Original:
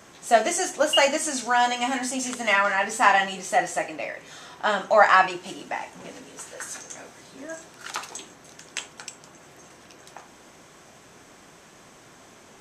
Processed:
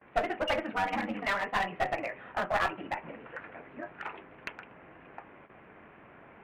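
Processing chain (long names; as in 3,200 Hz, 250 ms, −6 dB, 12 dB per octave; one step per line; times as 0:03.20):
Butterworth low-pass 2,600 Hz 48 dB per octave
hum removal 55.03 Hz, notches 24
noise gate with hold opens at −43 dBFS
speech leveller within 4 dB 0.5 s
time stretch by overlap-add 0.51×, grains 21 ms
asymmetric clip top −24.5 dBFS
level −4.5 dB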